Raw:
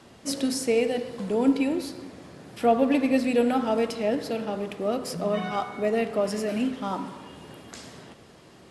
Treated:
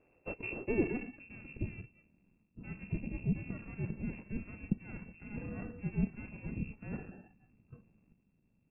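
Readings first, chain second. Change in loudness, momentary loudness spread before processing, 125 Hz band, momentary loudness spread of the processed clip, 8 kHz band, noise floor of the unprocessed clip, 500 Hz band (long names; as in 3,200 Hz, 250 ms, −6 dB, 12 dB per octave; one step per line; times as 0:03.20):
−14.0 dB, 20 LU, +1.0 dB, 17 LU, below −40 dB, −51 dBFS, −19.5 dB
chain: sub-octave generator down 2 octaves, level −3 dB
noise reduction from a noise print of the clip's start 21 dB
half-wave rectification
low-shelf EQ 230 Hz +11.5 dB
voice inversion scrambler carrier 2,700 Hz
reversed playback
downward compressor 6 to 1, threshold −26 dBFS, peak gain reduction 18 dB
reversed playback
low-pass filter sweep 460 Hz → 200 Hz, 0:00.36–0:01.56
level +18 dB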